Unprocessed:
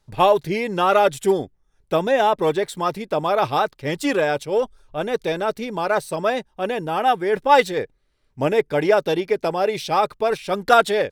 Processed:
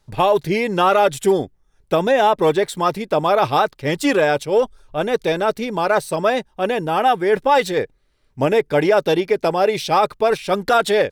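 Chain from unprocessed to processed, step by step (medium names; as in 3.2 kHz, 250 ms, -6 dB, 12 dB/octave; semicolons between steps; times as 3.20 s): loudness maximiser +9.5 dB; trim -5.5 dB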